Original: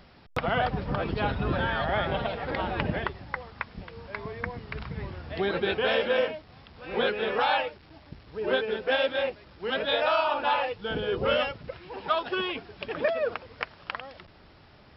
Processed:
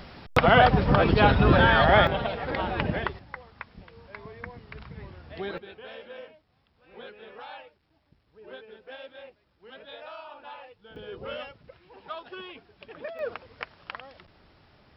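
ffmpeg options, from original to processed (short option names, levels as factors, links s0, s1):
-af "asetnsamples=n=441:p=0,asendcmd='2.07 volume volume 1dB;3.19 volume volume -6.5dB;5.58 volume volume -18dB;10.96 volume volume -11.5dB;13.19 volume volume -4dB',volume=2.82"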